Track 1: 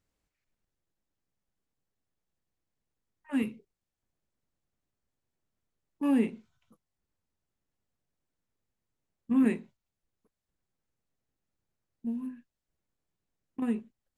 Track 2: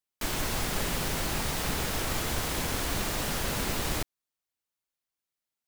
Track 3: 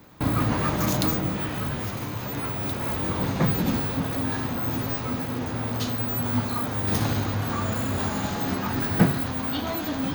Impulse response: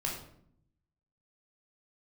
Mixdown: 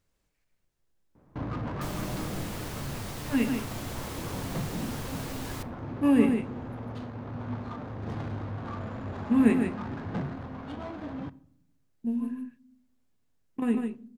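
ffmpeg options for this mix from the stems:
-filter_complex "[0:a]volume=1.33,asplit=3[s0][s1][s2];[s1]volume=0.266[s3];[s2]volume=0.631[s4];[1:a]adelay=1600,volume=0.299,asplit=2[s5][s6];[s6]volume=0.106[s7];[2:a]asoftclip=type=tanh:threshold=0.112,adynamicsmooth=sensitivity=2:basefreq=1000,adelay=1150,volume=0.398,asplit=2[s8][s9];[s9]volume=0.112[s10];[3:a]atrim=start_sample=2205[s11];[s3][s7][s10]amix=inputs=3:normalize=0[s12];[s12][s11]afir=irnorm=-1:irlink=0[s13];[s4]aecho=0:1:149:1[s14];[s0][s5][s8][s13][s14]amix=inputs=5:normalize=0"

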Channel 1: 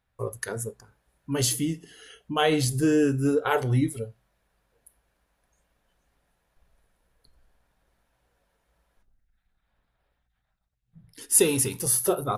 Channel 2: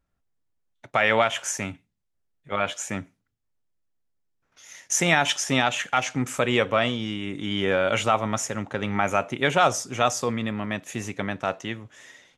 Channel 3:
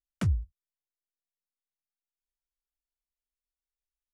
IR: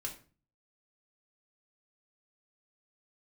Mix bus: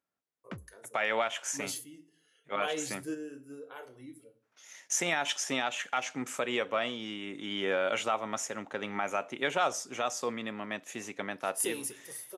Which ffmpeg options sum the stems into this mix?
-filter_complex "[0:a]adelay=250,volume=0.2,asplit=2[s0][s1];[s1]volume=0.299[s2];[1:a]alimiter=limit=0.299:level=0:latency=1:release=243,volume=0.501,asplit=2[s3][s4];[2:a]lowpass=2700,adelay=300,volume=0.562[s5];[s4]apad=whole_len=556653[s6];[s0][s6]sidechaingate=range=0.251:threshold=0.00251:ratio=16:detection=peak[s7];[3:a]atrim=start_sample=2205[s8];[s2][s8]afir=irnorm=-1:irlink=0[s9];[s7][s3][s5][s9]amix=inputs=4:normalize=0,highpass=270"

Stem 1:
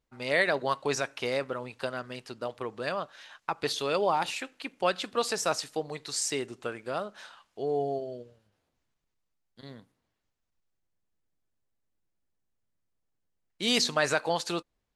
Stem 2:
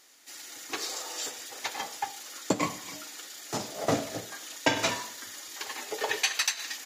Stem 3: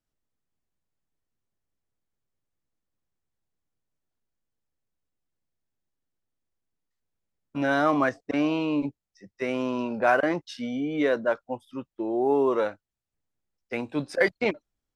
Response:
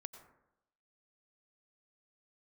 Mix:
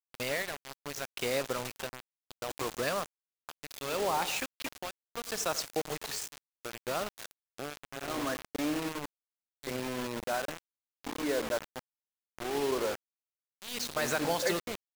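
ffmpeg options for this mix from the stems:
-filter_complex "[0:a]acontrast=26,volume=0.794,asplit=4[s0][s1][s2][s3];[s1]volume=0.2[s4];[s2]volume=0.075[s5];[1:a]highpass=f=260:w=0.5412,highpass=f=260:w=1.3066,flanger=delay=9.7:depth=2.4:regen=70:speed=0.59:shape=triangular,volume=1.06,asplit=2[s6][s7];[s7]volume=0.168[s8];[2:a]highshelf=f=2400:g=-6.5,adelay=250,volume=0.316,asplit=3[s9][s10][s11];[s10]volume=0.631[s12];[s11]volume=0.299[s13];[s3]apad=whole_len=302112[s14];[s6][s14]sidechaincompress=threshold=0.0316:ratio=6:attack=6.7:release=622[s15];[s0][s15]amix=inputs=2:normalize=0,adynamicequalizer=threshold=0.00398:dfrequency=6300:dqfactor=3.4:tfrequency=6300:tqfactor=3.4:attack=5:release=100:ratio=0.375:range=2.5:mode=boostabove:tftype=bell,acompressor=threshold=0.0251:ratio=2.5,volume=1[s16];[3:a]atrim=start_sample=2205[s17];[s4][s12]amix=inputs=2:normalize=0[s18];[s18][s17]afir=irnorm=-1:irlink=0[s19];[s5][s8][s13]amix=inputs=3:normalize=0,aecho=0:1:87|174|261|348|435|522|609|696|783:1|0.57|0.325|0.185|0.106|0.0602|0.0343|0.0195|0.0111[s20];[s9][s16][s19][s20]amix=inputs=4:normalize=0,tremolo=f=0.7:d=0.82,acrusher=bits=5:mix=0:aa=0.000001"

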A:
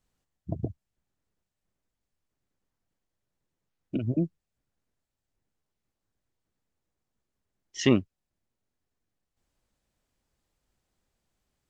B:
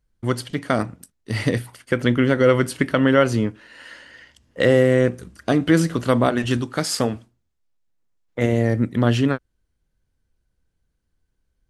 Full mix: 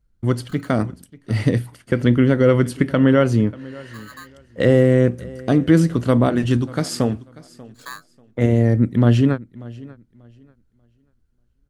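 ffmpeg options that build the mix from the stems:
-filter_complex "[0:a]aeval=exprs='val(0)*sgn(sin(2*PI*1400*n/s))':c=same,volume=0.168[s0];[1:a]volume=0.631,asplit=2[s1][s2];[s2]volume=0.0891,aecho=0:1:589|1178|1767|2356:1|0.23|0.0529|0.0122[s3];[s0][s1][s3]amix=inputs=3:normalize=0,lowshelf=f=420:g=10"

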